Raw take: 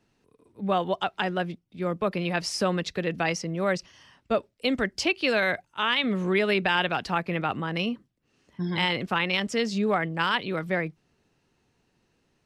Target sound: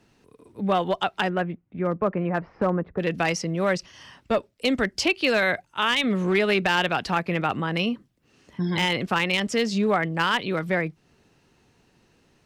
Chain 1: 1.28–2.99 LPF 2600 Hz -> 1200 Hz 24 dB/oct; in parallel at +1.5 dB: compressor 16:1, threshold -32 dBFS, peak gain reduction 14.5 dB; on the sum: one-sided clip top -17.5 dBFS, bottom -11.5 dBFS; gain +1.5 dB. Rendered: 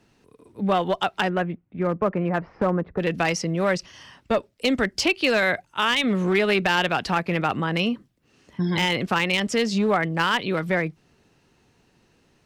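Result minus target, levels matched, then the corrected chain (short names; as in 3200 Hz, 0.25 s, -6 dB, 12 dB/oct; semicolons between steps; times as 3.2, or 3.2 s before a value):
compressor: peak gain reduction -6.5 dB
1.28–2.99 LPF 2600 Hz -> 1200 Hz 24 dB/oct; in parallel at +1.5 dB: compressor 16:1, threshold -39 dBFS, peak gain reduction 21 dB; on the sum: one-sided clip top -17.5 dBFS, bottom -11.5 dBFS; gain +1.5 dB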